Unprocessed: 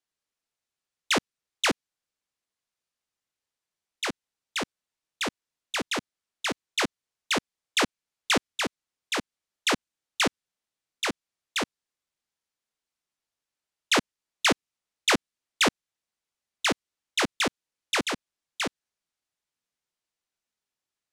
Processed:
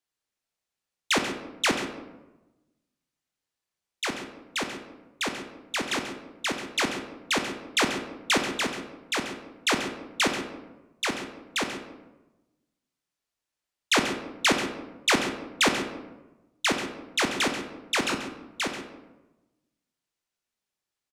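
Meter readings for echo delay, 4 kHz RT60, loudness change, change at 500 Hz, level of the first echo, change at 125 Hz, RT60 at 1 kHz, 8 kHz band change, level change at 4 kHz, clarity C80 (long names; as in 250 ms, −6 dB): 136 ms, 0.60 s, +0.5 dB, +1.5 dB, −12.0 dB, +2.0 dB, 1.0 s, +1.0 dB, +0.5 dB, 8.0 dB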